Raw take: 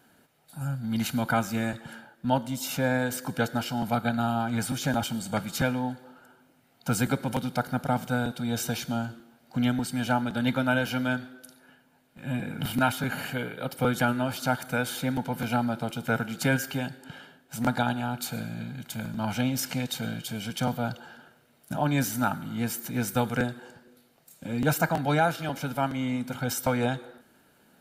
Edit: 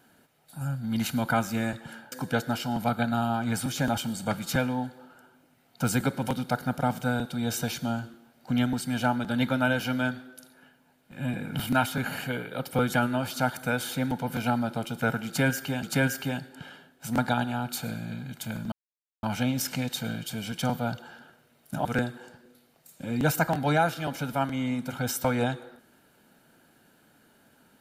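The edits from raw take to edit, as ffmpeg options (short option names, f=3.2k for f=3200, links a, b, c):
-filter_complex "[0:a]asplit=5[a][b][c][d][e];[a]atrim=end=2.122[f];[b]atrim=start=3.178:end=16.892[g];[c]atrim=start=16.318:end=19.21,asetpts=PTS-STARTPTS,afade=t=out:st=2.888:d=0.004:c=hsin,apad=pad_dur=0.51[h];[d]atrim=start=19.21:end=21.832,asetpts=PTS-STARTPTS,afade=t=in:d=0.004:c=hsin[i];[e]atrim=start=23.268[j];[f][g]acrossfade=d=0.004:c1=hsin:c2=hsin[k];[h][i]concat=n=2:v=0:a=1[l];[k][l]acrossfade=d=0.004:c1=hsin:c2=hsin[m];[m][j]acrossfade=d=0.004:c1=hsin:c2=hsin"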